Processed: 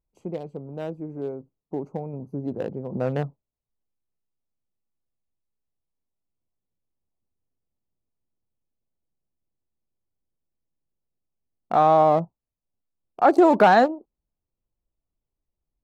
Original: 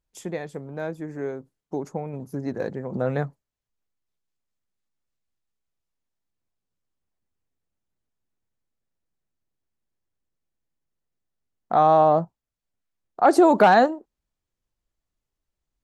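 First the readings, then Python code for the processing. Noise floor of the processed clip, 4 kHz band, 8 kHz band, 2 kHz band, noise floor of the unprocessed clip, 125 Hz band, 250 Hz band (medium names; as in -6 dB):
under -85 dBFS, -0.5 dB, no reading, -0.5 dB, under -85 dBFS, 0.0 dB, 0.0 dB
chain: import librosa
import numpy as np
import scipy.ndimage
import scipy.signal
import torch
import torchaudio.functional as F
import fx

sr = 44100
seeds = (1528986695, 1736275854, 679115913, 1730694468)

y = fx.wiener(x, sr, points=25)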